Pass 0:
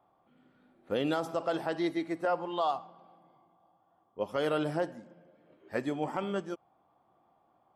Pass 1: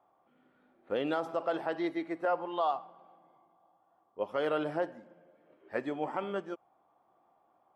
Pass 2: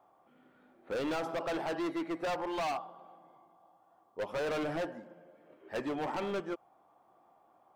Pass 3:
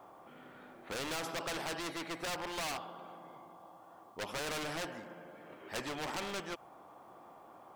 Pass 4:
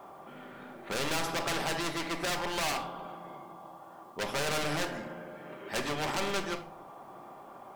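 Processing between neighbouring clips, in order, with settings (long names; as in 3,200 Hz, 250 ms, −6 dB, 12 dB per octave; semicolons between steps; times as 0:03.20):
bass and treble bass −9 dB, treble −13 dB
gain into a clipping stage and back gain 35.5 dB; level +4 dB
every bin compressed towards the loudest bin 2 to 1; level +8 dB
rectangular room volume 770 cubic metres, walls furnished, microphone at 1.2 metres; level +5.5 dB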